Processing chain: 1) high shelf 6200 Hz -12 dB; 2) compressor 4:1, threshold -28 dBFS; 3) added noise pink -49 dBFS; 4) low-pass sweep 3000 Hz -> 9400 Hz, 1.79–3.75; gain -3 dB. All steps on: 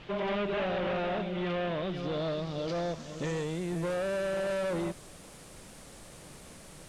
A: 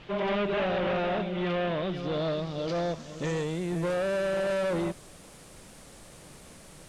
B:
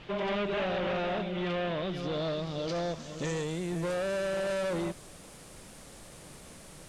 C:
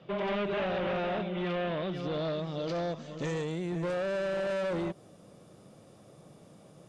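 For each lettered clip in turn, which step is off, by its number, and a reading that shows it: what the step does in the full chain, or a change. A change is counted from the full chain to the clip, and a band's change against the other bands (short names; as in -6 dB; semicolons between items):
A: 2, mean gain reduction 2.0 dB; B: 1, 4 kHz band +2.0 dB; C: 3, 8 kHz band -7.0 dB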